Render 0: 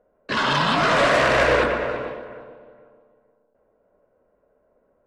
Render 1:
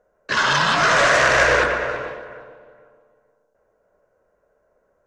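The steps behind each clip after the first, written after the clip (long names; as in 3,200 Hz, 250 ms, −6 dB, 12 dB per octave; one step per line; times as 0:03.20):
graphic EQ with 15 bands 250 Hz −8 dB, 1,600 Hz +6 dB, 6,300 Hz +11 dB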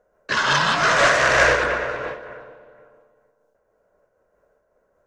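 amplitude modulation by smooth noise, depth 55%
level +2.5 dB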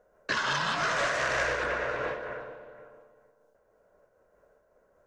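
downward compressor 4 to 1, threshold −28 dBFS, peak gain reduction 14 dB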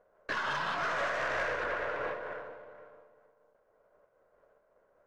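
gain on one half-wave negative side −7 dB
mid-hump overdrive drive 10 dB, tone 1,200 Hz, clips at −17 dBFS
level −1.5 dB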